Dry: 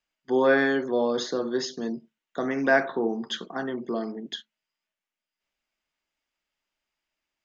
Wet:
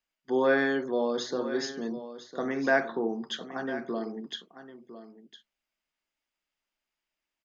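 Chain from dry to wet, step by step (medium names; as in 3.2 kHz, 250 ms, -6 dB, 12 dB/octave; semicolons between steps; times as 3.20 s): hum notches 60/120 Hz; on a send: delay 1005 ms -13.5 dB; on the sum: trim -3.5 dB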